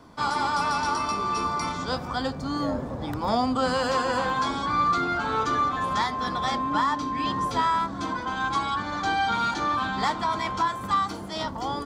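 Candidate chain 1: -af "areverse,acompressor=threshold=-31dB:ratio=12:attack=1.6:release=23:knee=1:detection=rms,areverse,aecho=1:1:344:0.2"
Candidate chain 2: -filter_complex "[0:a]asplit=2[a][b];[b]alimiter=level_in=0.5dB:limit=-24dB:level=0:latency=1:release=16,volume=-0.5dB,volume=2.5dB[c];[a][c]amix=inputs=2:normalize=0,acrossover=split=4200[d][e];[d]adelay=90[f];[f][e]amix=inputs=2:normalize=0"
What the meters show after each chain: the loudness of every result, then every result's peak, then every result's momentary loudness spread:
-34.0, -22.0 LUFS; -23.5, -10.5 dBFS; 2, 4 LU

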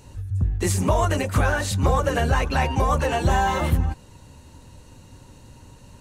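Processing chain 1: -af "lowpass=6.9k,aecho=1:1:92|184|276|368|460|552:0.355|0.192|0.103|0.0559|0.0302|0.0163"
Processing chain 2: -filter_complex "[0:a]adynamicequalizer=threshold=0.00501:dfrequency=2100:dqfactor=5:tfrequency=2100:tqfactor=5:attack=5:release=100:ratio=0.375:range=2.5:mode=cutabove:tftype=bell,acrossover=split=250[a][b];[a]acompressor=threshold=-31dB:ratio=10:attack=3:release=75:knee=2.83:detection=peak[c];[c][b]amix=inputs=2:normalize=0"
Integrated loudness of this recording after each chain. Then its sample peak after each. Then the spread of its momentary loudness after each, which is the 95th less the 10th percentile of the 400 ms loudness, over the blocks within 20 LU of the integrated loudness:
-22.0, -25.0 LUFS; -8.0, -10.5 dBFS; 6, 12 LU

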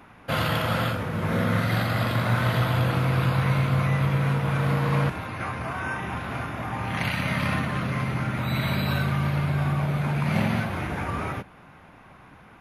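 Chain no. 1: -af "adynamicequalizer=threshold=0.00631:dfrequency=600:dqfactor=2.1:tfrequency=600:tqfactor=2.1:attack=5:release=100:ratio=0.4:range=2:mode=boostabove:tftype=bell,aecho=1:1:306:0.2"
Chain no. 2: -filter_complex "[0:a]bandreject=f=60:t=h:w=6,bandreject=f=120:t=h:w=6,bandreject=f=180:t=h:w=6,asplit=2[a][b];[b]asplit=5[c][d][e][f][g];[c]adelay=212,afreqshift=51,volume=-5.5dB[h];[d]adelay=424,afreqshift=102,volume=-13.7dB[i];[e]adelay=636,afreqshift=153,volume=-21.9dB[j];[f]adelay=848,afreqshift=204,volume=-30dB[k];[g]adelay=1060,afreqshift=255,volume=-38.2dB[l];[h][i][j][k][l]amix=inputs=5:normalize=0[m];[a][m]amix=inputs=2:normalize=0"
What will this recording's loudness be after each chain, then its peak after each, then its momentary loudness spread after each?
-25.0, -24.5 LUFS; -9.0, -9.5 dBFS; 8, 8 LU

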